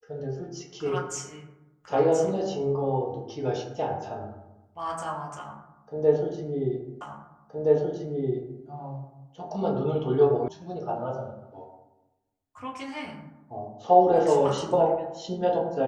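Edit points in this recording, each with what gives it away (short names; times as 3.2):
7.01 repeat of the last 1.62 s
10.48 sound cut off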